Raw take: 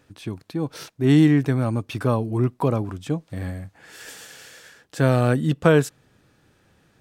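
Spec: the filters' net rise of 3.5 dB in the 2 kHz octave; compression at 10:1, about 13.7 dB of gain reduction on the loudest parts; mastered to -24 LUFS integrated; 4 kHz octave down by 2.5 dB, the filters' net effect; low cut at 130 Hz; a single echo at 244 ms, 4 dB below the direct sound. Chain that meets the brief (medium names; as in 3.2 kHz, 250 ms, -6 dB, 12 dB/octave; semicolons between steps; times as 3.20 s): high-pass 130 Hz; peaking EQ 2 kHz +6 dB; peaking EQ 4 kHz -6 dB; compression 10:1, threshold -25 dBFS; delay 244 ms -4 dB; trim +7.5 dB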